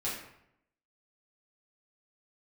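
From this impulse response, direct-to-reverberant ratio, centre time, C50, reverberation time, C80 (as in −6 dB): −9.0 dB, 49 ms, 3.0 dB, 0.75 s, 6.0 dB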